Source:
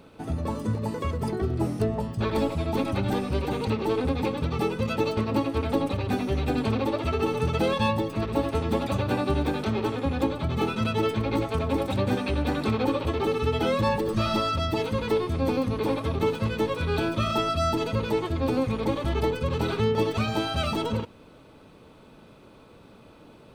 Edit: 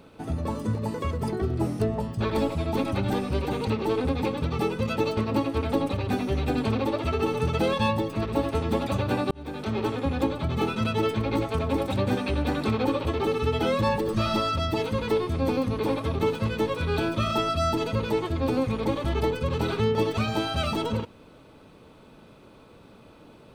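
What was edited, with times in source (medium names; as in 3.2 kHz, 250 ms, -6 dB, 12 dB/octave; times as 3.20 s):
9.31–9.81 s: fade in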